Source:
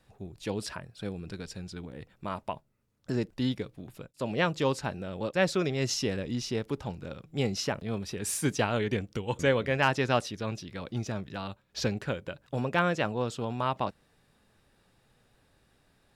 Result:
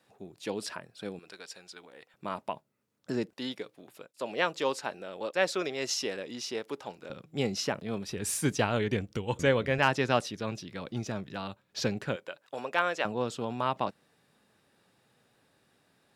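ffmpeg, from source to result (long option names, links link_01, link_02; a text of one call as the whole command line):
ffmpeg -i in.wav -af "asetnsamples=nb_out_samples=441:pad=0,asendcmd='1.19 highpass f 620;2.14 highpass f 190;3.33 highpass f 390;7.1 highpass f 150;8.09 highpass f 45;9.78 highpass f 120;12.16 highpass f 500;13.05 highpass f 150',highpass=230" out.wav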